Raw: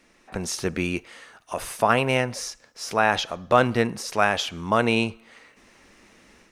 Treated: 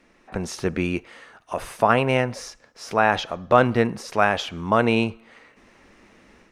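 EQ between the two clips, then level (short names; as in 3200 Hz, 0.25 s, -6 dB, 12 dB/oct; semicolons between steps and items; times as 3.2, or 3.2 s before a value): high shelf 3600 Hz -10.5 dB; +2.5 dB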